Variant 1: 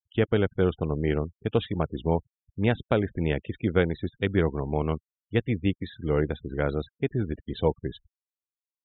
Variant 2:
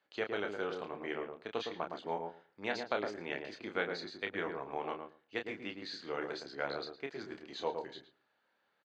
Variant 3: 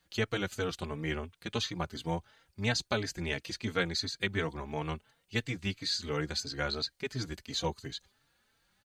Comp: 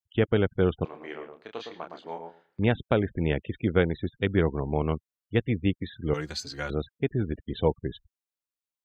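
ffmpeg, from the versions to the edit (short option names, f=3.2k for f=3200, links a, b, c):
-filter_complex "[0:a]asplit=3[a][b][c];[a]atrim=end=0.852[d];[1:a]atrim=start=0.848:end=2.592[e];[b]atrim=start=2.588:end=6.142[f];[2:a]atrim=start=6.138:end=6.702[g];[c]atrim=start=6.698[h];[d][e]acrossfade=d=0.004:c1=hsin:c2=hsin[i];[i][f]acrossfade=d=0.004:c1=hsin:c2=hsin[j];[j][g]acrossfade=d=0.004:c1=hsin:c2=hsin[k];[k][h]acrossfade=d=0.004:c1=hsin:c2=hsin"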